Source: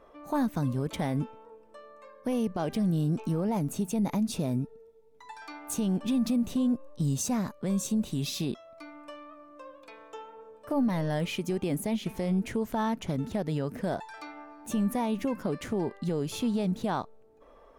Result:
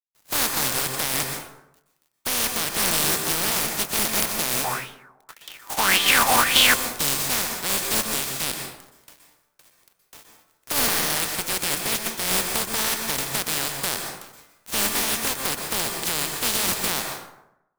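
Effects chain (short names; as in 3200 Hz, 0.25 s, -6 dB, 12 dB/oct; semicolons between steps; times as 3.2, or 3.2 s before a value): spectral contrast lowered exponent 0.15; sample leveller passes 2; crossover distortion -47 dBFS; plate-style reverb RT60 0.84 s, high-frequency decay 0.55×, pre-delay 0.11 s, DRR 3.5 dB; 4.64–6.74 LFO bell 1.8 Hz 770–3300 Hz +17 dB; gain -3 dB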